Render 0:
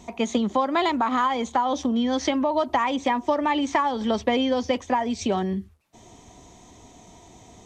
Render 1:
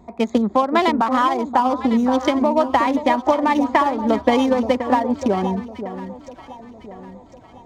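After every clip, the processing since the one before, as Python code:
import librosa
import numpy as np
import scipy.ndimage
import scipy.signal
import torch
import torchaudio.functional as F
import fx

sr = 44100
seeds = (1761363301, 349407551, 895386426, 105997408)

y = fx.wiener(x, sr, points=15)
y = fx.echo_alternate(y, sr, ms=527, hz=1000.0, feedback_pct=65, wet_db=-7)
y = fx.upward_expand(y, sr, threshold_db=-31.0, expansion=1.5)
y = y * librosa.db_to_amplitude(7.0)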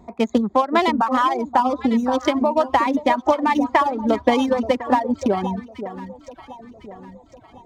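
y = fx.dereverb_blind(x, sr, rt60_s=0.92)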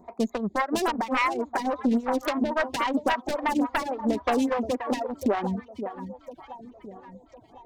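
y = fx.self_delay(x, sr, depth_ms=0.54)
y = 10.0 ** (-12.5 / 20.0) * np.tanh(y / 10.0 ** (-12.5 / 20.0))
y = fx.stagger_phaser(y, sr, hz=3.6)
y = y * librosa.db_to_amplitude(-1.5)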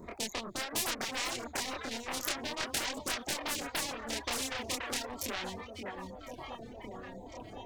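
y = fx.filter_lfo_notch(x, sr, shape='saw_up', hz=2.3, low_hz=770.0, high_hz=1700.0, q=1.4)
y = fx.chorus_voices(y, sr, voices=2, hz=0.34, base_ms=26, depth_ms=4.9, mix_pct=50)
y = fx.spectral_comp(y, sr, ratio=4.0)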